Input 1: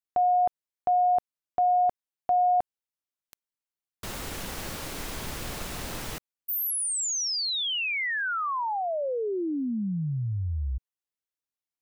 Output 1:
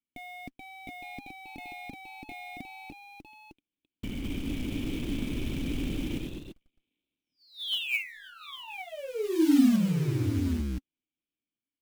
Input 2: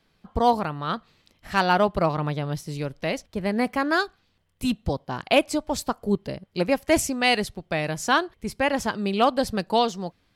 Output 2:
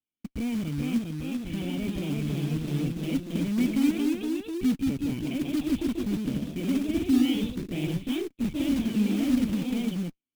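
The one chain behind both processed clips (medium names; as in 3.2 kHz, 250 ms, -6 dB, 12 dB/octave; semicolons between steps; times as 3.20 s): bass shelf 120 Hz +8 dB; fuzz box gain 36 dB, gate -44 dBFS; word length cut 12-bit, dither triangular; cascade formant filter i; short-mantissa float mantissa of 2-bit; ever faster or slower copies 440 ms, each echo +1 st, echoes 3; trim -5.5 dB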